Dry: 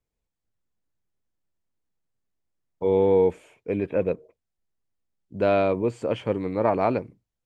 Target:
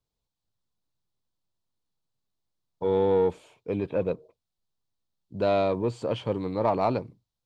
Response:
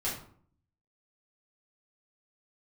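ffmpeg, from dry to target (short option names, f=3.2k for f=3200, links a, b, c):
-filter_complex "[0:a]equalizer=f=125:t=o:w=1:g=5,equalizer=f=1k:t=o:w=1:g=6,equalizer=f=2k:t=o:w=1:g=-7,equalizer=f=4k:t=o:w=1:g=11,asplit=2[a][b];[b]asoftclip=type=tanh:threshold=-17.5dB,volume=-4dB[c];[a][c]amix=inputs=2:normalize=0,volume=-7.5dB"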